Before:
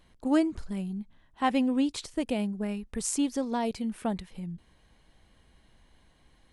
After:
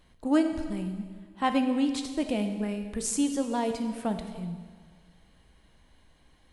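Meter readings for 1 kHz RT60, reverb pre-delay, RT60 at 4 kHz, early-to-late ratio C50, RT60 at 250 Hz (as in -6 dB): 1.7 s, 5 ms, 1.6 s, 8.0 dB, 1.7 s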